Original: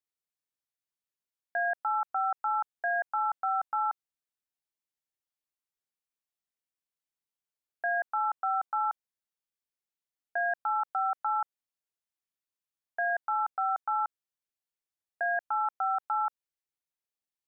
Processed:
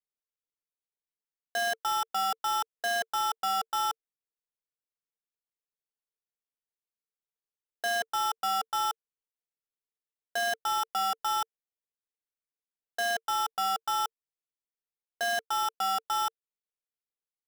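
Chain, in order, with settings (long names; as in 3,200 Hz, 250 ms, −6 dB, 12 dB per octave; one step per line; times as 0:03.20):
gap after every zero crossing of 0.17 ms
parametric band 450 Hz +14 dB 0.22 octaves
leveller curve on the samples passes 1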